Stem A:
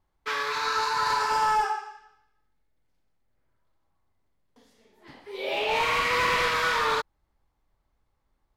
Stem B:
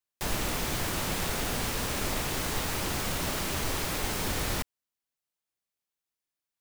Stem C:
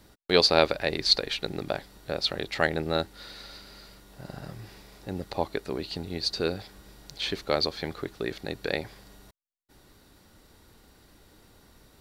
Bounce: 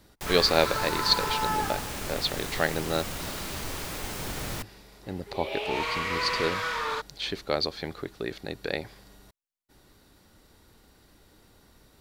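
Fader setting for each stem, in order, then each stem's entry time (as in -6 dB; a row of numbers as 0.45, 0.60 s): -5.5, -4.0, -1.5 dB; 0.00, 0.00, 0.00 s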